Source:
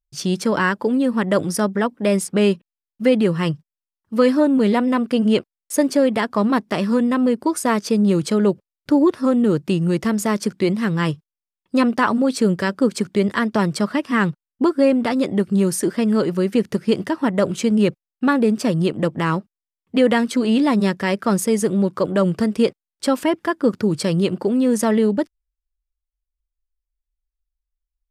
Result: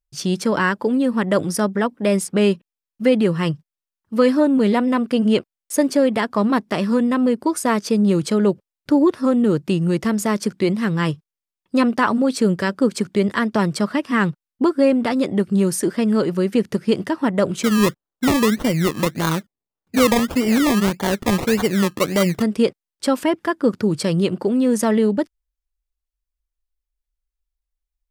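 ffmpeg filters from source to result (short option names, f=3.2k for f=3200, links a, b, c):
-filter_complex "[0:a]asplit=3[a][b][c];[a]afade=t=out:st=17.62:d=0.02[d];[b]acrusher=samples=24:mix=1:aa=0.000001:lfo=1:lforange=14.4:lforate=1.7,afade=t=in:st=17.62:d=0.02,afade=t=out:st=22.41:d=0.02[e];[c]afade=t=in:st=22.41:d=0.02[f];[d][e][f]amix=inputs=3:normalize=0"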